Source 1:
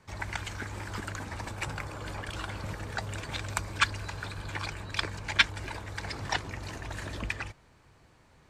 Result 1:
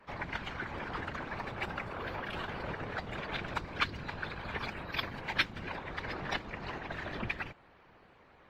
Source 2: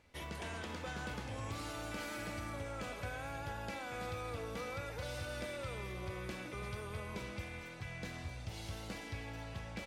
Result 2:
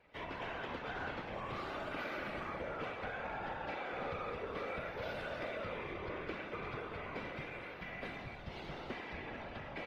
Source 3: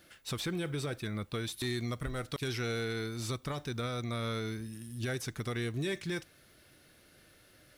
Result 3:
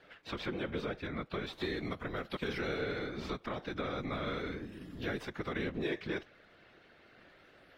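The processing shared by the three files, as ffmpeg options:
-filter_complex "[0:a]acrossover=split=320|3000[a][b][c];[b]acompressor=threshold=-41dB:ratio=2.5[d];[a][d][c]amix=inputs=3:normalize=0,afftfilt=real='hypot(re,im)*cos(2*PI*random(0))':imag='hypot(re,im)*sin(2*PI*random(1))':win_size=512:overlap=0.75,bass=f=250:g=-10,treble=f=4k:g=-14,acrossover=split=610|5500[e][f][g];[g]acrusher=samples=23:mix=1:aa=0.000001:lfo=1:lforange=36.8:lforate=0.35[h];[e][f][h]amix=inputs=3:normalize=0,volume=9.5dB" -ar 44100 -c:a aac -b:a 48k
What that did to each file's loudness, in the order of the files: -4.0, +1.0, -2.0 LU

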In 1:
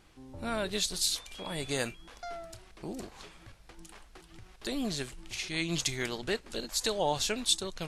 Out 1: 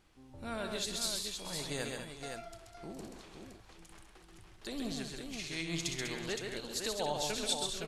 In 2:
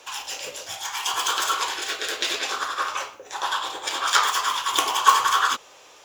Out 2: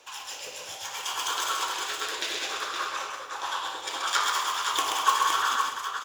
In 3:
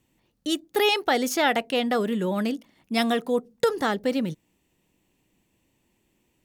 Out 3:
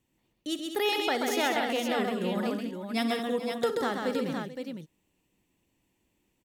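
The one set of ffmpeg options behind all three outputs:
-af "aecho=1:1:60|131|199|437|516:0.224|0.596|0.335|0.178|0.501,volume=-7dB"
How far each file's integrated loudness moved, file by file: -4.5, -4.5, -4.5 LU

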